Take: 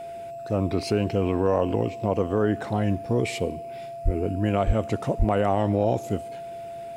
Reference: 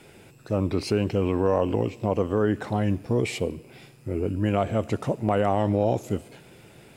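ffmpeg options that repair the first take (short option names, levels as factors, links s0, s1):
-filter_complex "[0:a]bandreject=f=680:w=30,asplit=3[s0][s1][s2];[s0]afade=t=out:st=4.04:d=0.02[s3];[s1]highpass=f=140:w=0.5412,highpass=f=140:w=1.3066,afade=t=in:st=4.04:d=0.02,afade=t=out:st=4.16:d=0.02[s4];[s2]afade=t=in:st=4.16:d=0.02[s5];[s3][s4][s5]amix=inputs=3:normalize=0,asplit=3[s6][s7][s8];[s6]afade=t=out:st=4.66:d=0.02[s9];[s7]highpass=f=140:w=0.5412,highpass=f=140:w=1.3066,afade=t=in:st=4.66:d=0.02,afade=t=out:st=4.78:d=0.02[s10];[s8]afade=t=in:st=4.78:d=0.02[s11];[s9][s10][s11]amix=inputs=3:normalize=0,asplit=3[s12][s13][s14];[s12]afade=t=out:st=5.18:d=0.02[s15];[s13]highpass=f=140:w=0.5412,highpass=f=140:w=1.3066,afade=t=in:st=5.18:d=0.02,afade=t=out:st=5.3:d=0.02[s16];[s14]afade=t=in:st=5.3:d=0.02[s17];[s15][s16][s17]amix=inputs=3:normalize=0"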